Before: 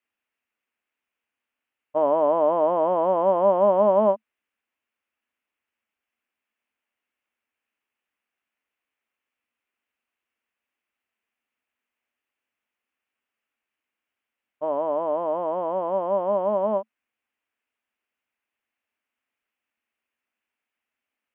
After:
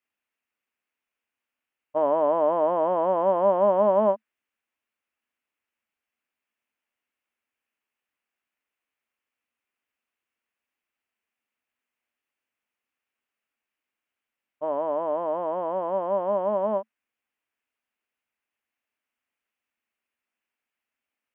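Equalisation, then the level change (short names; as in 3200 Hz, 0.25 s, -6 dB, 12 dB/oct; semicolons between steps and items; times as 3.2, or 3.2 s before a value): dynamic EQ 1700 Hz, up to +6 dB, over -45 dBFS, Q 2.6; -2.0 dB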